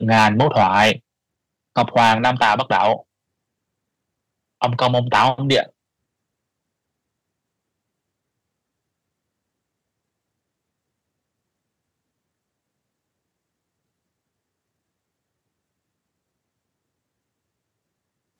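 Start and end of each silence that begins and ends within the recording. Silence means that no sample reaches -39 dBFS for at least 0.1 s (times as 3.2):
0.99–1.76
3.01–4.62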